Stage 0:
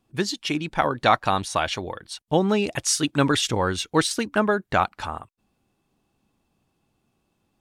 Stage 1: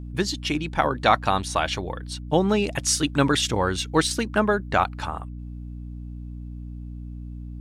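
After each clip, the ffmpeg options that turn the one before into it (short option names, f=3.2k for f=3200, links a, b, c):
-af "aeval=exprs='val(0)+0.02*(sin(2*PI*60*n/s)+sin(2*PI*2*60*n/s)/2+sin(2*PI*3*60*n/s)/3+sin(2*PI*4*60*n/s)/4+sin(2*PI*5*60*n/s)/5)':c=same"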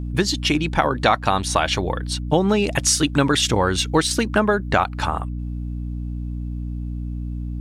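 -af "acompressor=threshold=-24dB:ratio=2.5,volume=8dB"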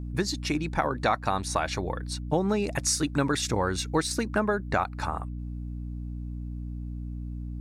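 -af "equalizer=f=3.1k:w=4.9:g=-14,volume=-7.5dB"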